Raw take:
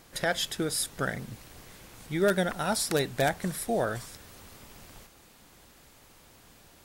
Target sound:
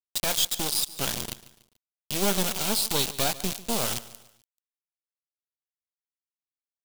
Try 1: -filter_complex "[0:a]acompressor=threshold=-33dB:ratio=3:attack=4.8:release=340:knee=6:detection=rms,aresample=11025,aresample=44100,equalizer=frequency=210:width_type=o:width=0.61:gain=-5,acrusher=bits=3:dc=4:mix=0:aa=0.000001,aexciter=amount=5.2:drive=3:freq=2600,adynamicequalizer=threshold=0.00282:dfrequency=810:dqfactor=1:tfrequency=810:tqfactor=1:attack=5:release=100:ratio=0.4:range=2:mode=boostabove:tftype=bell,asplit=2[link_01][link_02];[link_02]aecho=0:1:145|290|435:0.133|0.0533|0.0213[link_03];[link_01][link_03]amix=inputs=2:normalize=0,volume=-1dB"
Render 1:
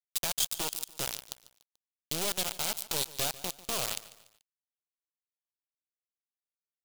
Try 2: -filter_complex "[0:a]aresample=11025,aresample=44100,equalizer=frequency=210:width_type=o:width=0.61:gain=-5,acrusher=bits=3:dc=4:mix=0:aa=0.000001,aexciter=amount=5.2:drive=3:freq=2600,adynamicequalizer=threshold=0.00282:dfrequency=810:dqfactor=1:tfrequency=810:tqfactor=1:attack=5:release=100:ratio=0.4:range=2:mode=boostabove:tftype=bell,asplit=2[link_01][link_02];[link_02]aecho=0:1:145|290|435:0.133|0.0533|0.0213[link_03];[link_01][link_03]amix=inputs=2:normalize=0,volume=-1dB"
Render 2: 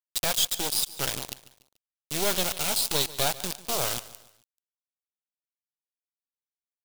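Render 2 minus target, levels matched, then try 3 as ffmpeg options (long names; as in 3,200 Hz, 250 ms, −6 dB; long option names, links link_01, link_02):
250 Hz band −5.5 dB
-filter_complex "[0:a]aresample=11025,aresample=44100,equalizer=frequency=210:width_type=o:width=0.61:gain=7,acrusher=bits=3:dc=4:mix=0:aa=0.000001,aexciter=amount=5.2:drive=3:freq=2600,adynamicequalizer=threshold=0.00282:dfrequency=810:dqfactor=1:tfrequency=810:tqfactor=1:attack=5:release=100:ratio=0.4:range=2:mode=boostabove:tftype=bell,asplit=2[link_01][link_02];[link_02]aecho=0:1:145|290|435:0.133|0.0533|0.0213[link_03];[link_01][link_03]amix=inputs=2:normalize=0,volume=-1dB"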